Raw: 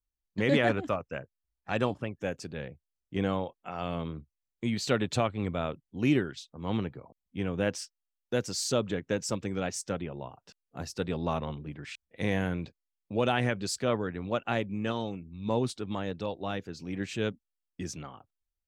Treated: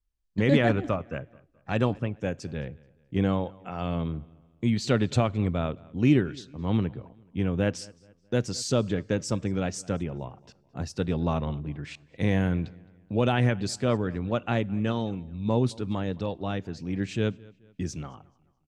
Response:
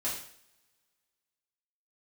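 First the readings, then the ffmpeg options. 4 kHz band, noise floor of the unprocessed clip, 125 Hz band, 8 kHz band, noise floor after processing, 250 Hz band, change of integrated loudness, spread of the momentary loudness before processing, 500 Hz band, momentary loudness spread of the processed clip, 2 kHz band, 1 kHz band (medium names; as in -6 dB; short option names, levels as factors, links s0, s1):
0.0 dB, under -85 dBFS, +7.5 dB, -0.5 dB, -65 dBFS, +5.0 dB, +4.0 dB, 14 LU, +2.0 dB, 14 LU, +0.5 dB, +1.0 dB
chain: -filter_complex "[0:a]lowpass=9500,lowshelf=f=240:g=9.5,asplit=2[s0][s1];[s1]adelay=215,lowpass=f=4500:p=1,volume=0.0668,asplit=2[s2][s3];[s3]adelay=215,lowpass=f=4500:p=1,volume=0.4,asplit=2[s4][s5];[s5]adelay=215,lowpass=f=4500:p=1,volume=0.4[s6];[s0][s2][s4][s6]amix=inputs=4:normalize=0,asplit=2[s7][s8];[1:a]atrim=start_sample=2205[s9];[s8][s9]afir=irnorm=-1:irlink=0,volume=0.0422[s10];[s7][s10]amix=inputs=2:normalize=0"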